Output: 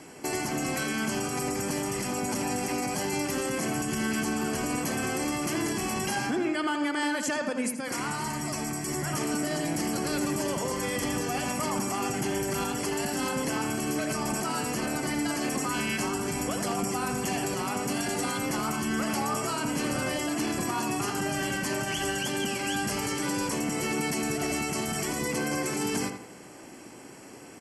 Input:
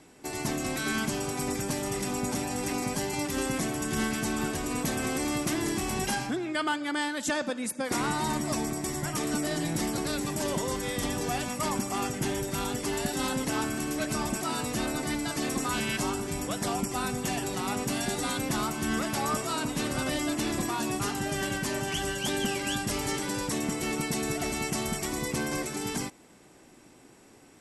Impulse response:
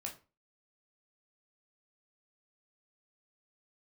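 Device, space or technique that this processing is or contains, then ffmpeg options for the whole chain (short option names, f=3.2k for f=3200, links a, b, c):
PA system with an anti-feedback notch: -filter_complex "[0:a]highpass=f=130:p=1,asuperstop=centerf=3700:order=4:qfactor=5.8,alimiter=level_in=6dB:limit=-24dB:level=0:latency=1:release=130,volume=-6dB,asettb=1/sr,asplit=3[a][b][c];[a]atrim=end=7.694[d];[b]atrim=start=7.69:end=8.87,asetpts=PTS-STARTPTS,afade=t=in:d=0.004:c=qsin,afade=t=out:st=1.176:d=0.004:c=qsin,equalizer=f=440:t=o:w=2.4:g=-5.5[e];[c]atrim=start=8.866[f];[d][e]acrossfade=d=0.004:c1=hsin:c2=qsin[g];[g][f]acrossfade=d=0.004:c1=qsin:c2=hsin,asplit=2[h][i];[i]adelay=82,lowpass=f=2.4k:p=1,volume=-6dB,asplit=2[j][k];[k]adelay=82,lowpass=f=2.4k:p=1,volume=0.37,asplit=2[l][m];[m]adelay=82,lowpass=f=2.4k:p=1,volume=0.37,asplit=2[n][o];[o]adelay=82,lowpass=f=2.4k:p=1,volume=0.37[p];[h][j][l][n][p]amix=inputs=5:normalize=0,volume=8.5dB"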